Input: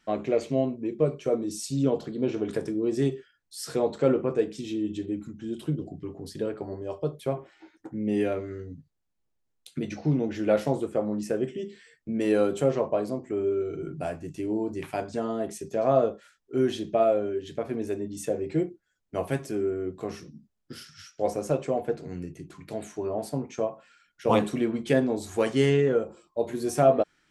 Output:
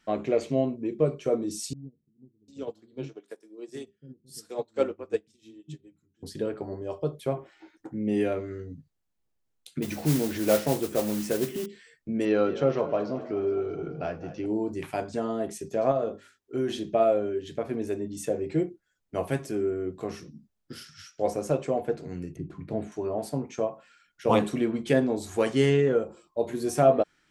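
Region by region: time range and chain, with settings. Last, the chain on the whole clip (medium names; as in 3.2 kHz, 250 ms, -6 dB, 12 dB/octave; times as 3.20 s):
1.73–6.23 s: treble shelf 3.5 kHz +10 dB + bands offset in time lows, highs 750 ms, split 260 Hz + upward expansion 2.5:1, over -38 dBFS
9.82–11.66 s: upward compressor, threshold -27 dBFS + modulation noise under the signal 12 dB
12.25–14.46 s: elliptic low-pass 5.8 kHz, stop band 50 dB + peaking EQ 1.3 kHz +5 dB 0.23 oct + frequency-shifting echo 213 ms, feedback 59%, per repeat +31 Hz, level -14 dB
15.91–16.87 s: high-pass 40 Hz + hum notches 50/100/150/200/250/300/350/400 Hz + compression 3:1, threshold -24 dBFS
22.36–22.92 s: low-pass 1.3 kHz 6 dB/octave + bass shelf 420 Hz +8 dB
whole clip: none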